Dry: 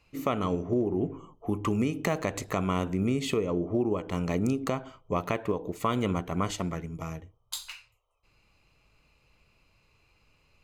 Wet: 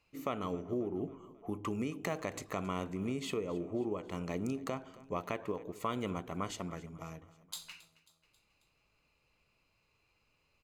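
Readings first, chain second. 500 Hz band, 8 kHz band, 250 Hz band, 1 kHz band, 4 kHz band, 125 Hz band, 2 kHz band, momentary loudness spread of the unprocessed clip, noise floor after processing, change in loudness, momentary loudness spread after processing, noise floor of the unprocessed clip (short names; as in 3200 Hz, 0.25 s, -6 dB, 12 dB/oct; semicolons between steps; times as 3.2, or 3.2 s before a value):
-8.0 dB, -7.5 dB, -9.0 dB, -7.5 dB, -7.5 dB, -11.0 dB, -7.5 dB, 10 LU, -76 dBFS, -8.5 dB, 9 LU, -68 dBFS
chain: low shelf 130 Hz -7 dB; on a send: feedback echo 0.27 s, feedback 56%, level -20 dB; on the sum: gain -7.5 dB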